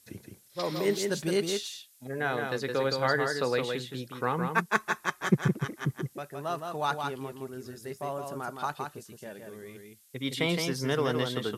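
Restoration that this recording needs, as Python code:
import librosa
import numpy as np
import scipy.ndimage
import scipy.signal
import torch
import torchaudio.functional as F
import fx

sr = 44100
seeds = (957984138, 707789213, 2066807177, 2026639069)

y = fx.fix_declip(x, sr, threshold_db=-11.0)
y = fx.noise_reduce(y, sr, print_start_s=0.0, print_end_s=0.5, reduce_db=21.0)
y = fx.fix_echo_inverse(y, sr, delay_ms=166, level_db=-5.0)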